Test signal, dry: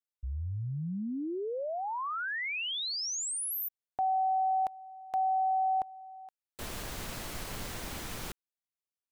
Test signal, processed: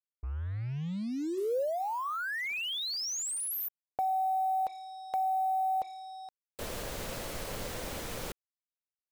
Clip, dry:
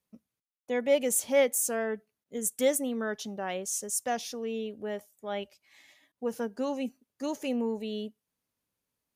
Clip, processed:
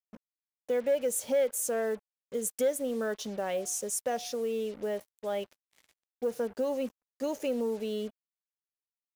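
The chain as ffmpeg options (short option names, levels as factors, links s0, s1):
-af "equalizer=f=520:t=o:w=0.61:g=9,bandreject=f=361.3:t=h:w=4,bandreject=f=722.6:t=h:w=4,bandreject=f=1083.9:t=h:w=4,acompressor=threshold=0.0316:ratio=2:attack=15:release=341:knee=1:detection=peak,asoftclip=type=tanh:threshold=0.126,acrusher=bits=7:mix=0:aa=0.5"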